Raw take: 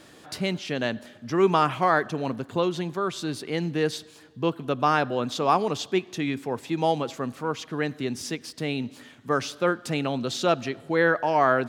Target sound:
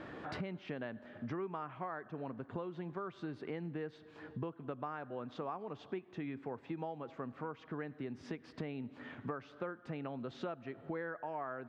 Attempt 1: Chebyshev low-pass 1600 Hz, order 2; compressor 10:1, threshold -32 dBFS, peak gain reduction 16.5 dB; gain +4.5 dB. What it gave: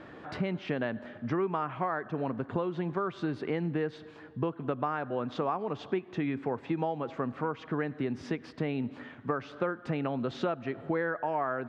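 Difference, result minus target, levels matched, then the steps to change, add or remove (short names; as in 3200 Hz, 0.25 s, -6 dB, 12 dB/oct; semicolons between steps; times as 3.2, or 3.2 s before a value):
compressor: peak gain reduction -10.5 dB
change: compressor 10:1, threshold -43.5 dBFS, peak gain reduction 27 dB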